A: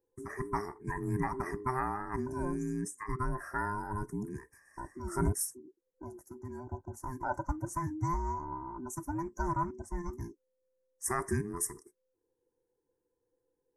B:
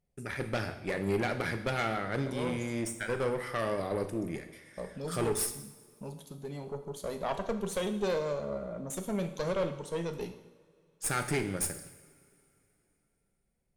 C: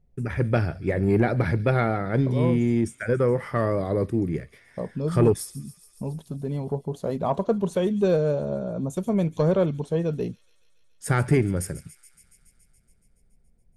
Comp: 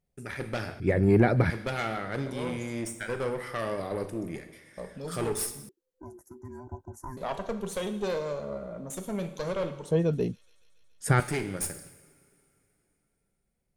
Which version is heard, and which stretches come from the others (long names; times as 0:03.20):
B
0:00.80–0:01.50: punch in from C
0:05.69–0:07.17: punch in from A
0:09.91–0:11.20: punch in from C